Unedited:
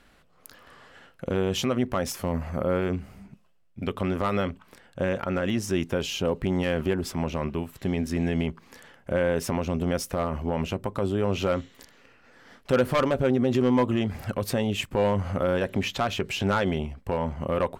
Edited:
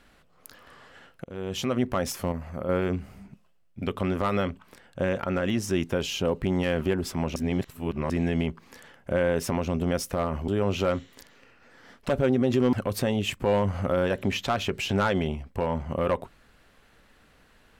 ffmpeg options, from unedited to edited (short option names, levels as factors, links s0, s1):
-filter_complex "[0:a]asplit=9[s0][s1][s2][s3][s4][s5][s6][s7][s8];[s0]atrim=end=1.24,asetpts=PTS-STARTPTS,afade=t=out:st=1.236:d=0.004:c=hsin:silence=0.0749894[s9];[s1]atrim=start=1.24:end=2.322,asetpts=PTS-STARTPTS,afade=t=in:d=0.55:silence=0.0749894[s10];[s2]atrim=start=2.318:end=2.692,asetpts=PTS-STARTPTS,volume=0.531[s11];[s3]atrim=start=2.688:end=7.362[s12];[s4]atrim=start=7.358:end=8.102,asetpts=PTS-STARTPTS,areverse[s13];[s5]atrim=start=8.098:end=10.482[s14];[s6]atrim=start=11.098:end=12.712[s15];[s7]atrim=start=13.098:end=13.742[s16];[s8]atrim=start=14.238[s17];[s9][s10]concat=n=2:v=0:a=1[s18];[s18][s11]acrossfade=d=0.004:c1=hsin:c2=hsin[s19];[s19][s12]acrossfade=d=0.004:c1=hsin:c2=hsin[s20];[s20][s13]acrossfade=d=0.004:c1=hsin:c2=hsin[s21];[s21][s14]acrossfade=d=0.004:c1=hsin:c2=hsin[s22];[s22][s15]acrossfade=d=0.004:c1=hsin:c2=hsin[s23];[s23][s16]acrossfade=d=0.004:c1=hsin:c2=hsin[s24];[s24][s17]acrossfade=d=0.004:c1=hsin:c2=hsin"